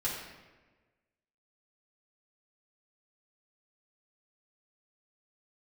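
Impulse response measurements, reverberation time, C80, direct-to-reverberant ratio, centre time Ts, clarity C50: 1.3 s, 4.5 dB, −8.0 dB, 59 ms, 2.0 dB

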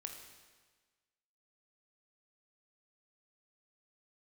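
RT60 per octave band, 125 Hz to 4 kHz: 1.4, 1.4, 1.4, 1.4, 1.4, 1.3 seconds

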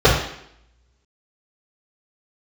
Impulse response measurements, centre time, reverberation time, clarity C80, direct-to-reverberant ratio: 37 ms, 0.70 s, 8.0 dB, −10.5 dB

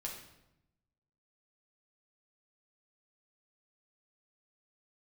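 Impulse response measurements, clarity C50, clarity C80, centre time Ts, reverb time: 5.0 dB, 8.0 dB, 34 ms, 0.85 s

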